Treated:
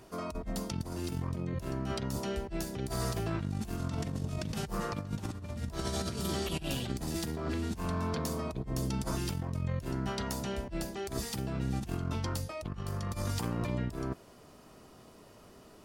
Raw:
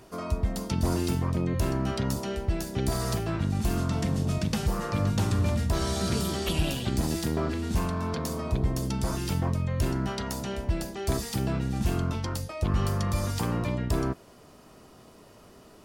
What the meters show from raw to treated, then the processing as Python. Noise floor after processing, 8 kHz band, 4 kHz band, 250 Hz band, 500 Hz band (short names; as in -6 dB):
-56 dBFS, -5.5 dB, -5.5 dB, -6.5 dB, -5.5 dB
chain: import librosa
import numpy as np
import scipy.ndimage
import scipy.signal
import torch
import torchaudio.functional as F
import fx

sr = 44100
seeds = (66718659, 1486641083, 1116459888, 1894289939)

y = fx.over_compress(x, sr, threshold_db=-29.0, ratio=-0.5)
y = F.gain(torch.from_numpy(y), -5.0).numpy()